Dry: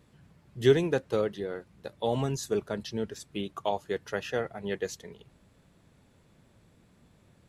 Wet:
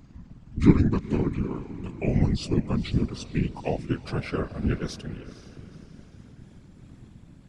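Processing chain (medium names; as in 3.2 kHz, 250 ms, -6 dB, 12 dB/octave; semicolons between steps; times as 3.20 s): pitch bend over the whole clip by -8.5 st ending unshifted; low-pass 10 kHz 24 dB/octave; resonant low shelf 240 Hz +8.5 dB, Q 1.5; in parallel at -1 dB: compression, threshold -34 dBFS, peak gain reduction 21 dB; on the sum: echo that smears into a reverb 480 ms, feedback 43%, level -14 dB; whisper effect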